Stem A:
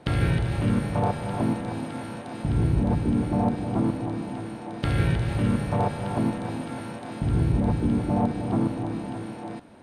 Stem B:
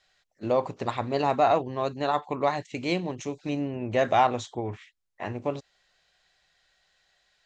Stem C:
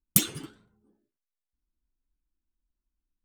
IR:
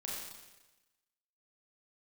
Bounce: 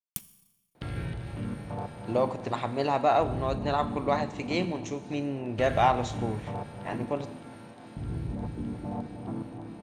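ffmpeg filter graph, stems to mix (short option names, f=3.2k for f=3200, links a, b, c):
-filter_complex "[0:a]adelay=750,volume=-11.5dB[a];[1:a]adelay=1650,volume=-3dB,asplit=2[b][c];[c]volume=-11dB[d];[2:a]aeval=exprs='sgn(val(0))*max(abs(val(0))-0.0841,0)':c=same,acompressor=threshold=-28dB:ratio=6,volume=-5dB,asplit=2[e][f];[f]volume=-13.5dB[g];[3:a]atrim=start_sample=2205[h];[d][g]amix=inputs=2:normalize=0[i];[i][h]afir=irnorm=-1:irlink=0[j];[a][b][e][j]amix=inputs=4:normalize=0"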